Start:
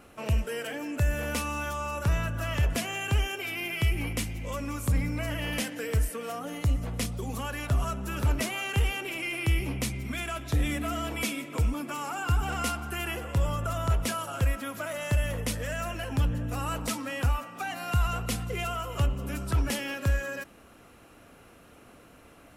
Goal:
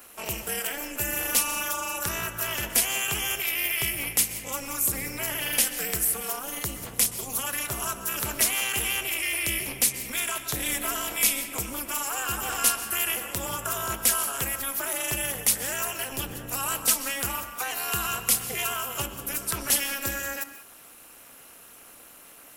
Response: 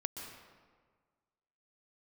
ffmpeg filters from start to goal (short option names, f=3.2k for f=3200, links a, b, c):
-filter_complex "[0:a]aemphasis=mode=production:type=riaa,tremolo=f=270:d=0.919,asplit=2[a][b];[1:a]atrim=start_sample=2205,afade=t=out:st=0.26:d=0.01,atrim=end_sample=11907,asetrate=43218,aresample=44100[c];[b][c]afir=irnorm=-1:irlink=0,volume=-1.5dB[d];[a][d]amix=inputs=2:normalize=0"